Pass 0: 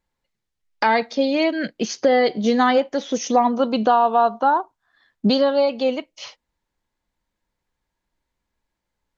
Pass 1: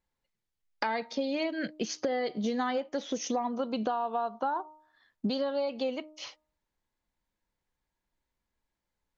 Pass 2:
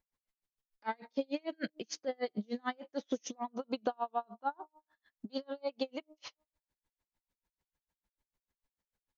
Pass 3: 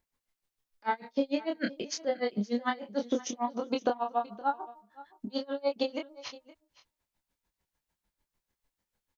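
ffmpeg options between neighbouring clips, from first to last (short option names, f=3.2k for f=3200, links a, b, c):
-af "bandreject=f=307.8:t=h:w=4,bandreject=f=615.6:t=h:w=4,bandreject=f=923.4:t=h:w=4,bandreject=f=1.2312k:t=h:w=4,acompressor=threshold=-22dB:ratio=5,volume=-6dB"
-af "aeval=exprs='val(0)*pow(10,-39*(0.5-0.5*cos(2*PI*6.7*n/s))/20)':c=same"
-filter_complex "[0:a]asplit=2[a][b];[b]adelay=25,volume=-3.5dB[c];[a][c]amix=inputs=2:normalize=0,aecho=1:1:518:0.106,volume=4.5dB"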